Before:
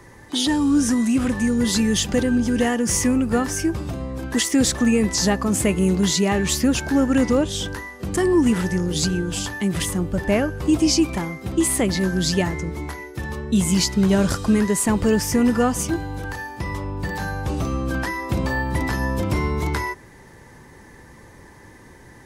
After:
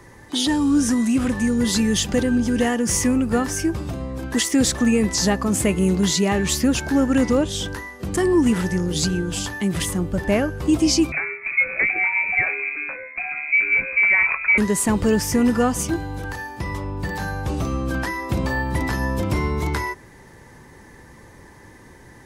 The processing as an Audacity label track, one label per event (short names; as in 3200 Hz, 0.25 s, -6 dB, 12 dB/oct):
11.120000	14.580000	inverted band carrier 2500 Hz